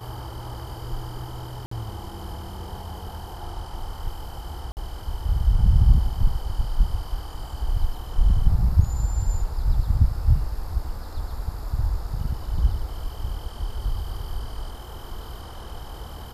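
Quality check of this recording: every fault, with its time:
0:01.66–0:01.71: drop-out 54 ms
0:04.72–0:04.77: drop-out 49 ms

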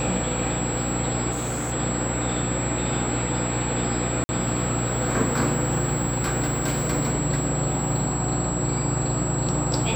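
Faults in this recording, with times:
mains hum 60 Hz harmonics 6 −30 dBFS
whistle 7,700 Hz −30 dBFS
0:01.31–0:01.73: clipping −23.5 dBFS
0:04.24–0:04.29: drop-out 50 ms

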